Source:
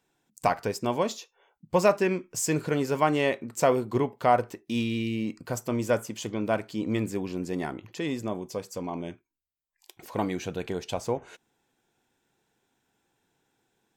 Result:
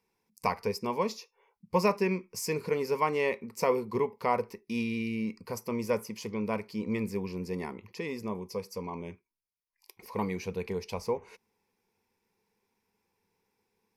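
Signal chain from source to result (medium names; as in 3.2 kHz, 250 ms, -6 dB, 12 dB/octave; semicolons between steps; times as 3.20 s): rippled EQ curve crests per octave 0.86, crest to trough 12 dB; trim -5.5 dB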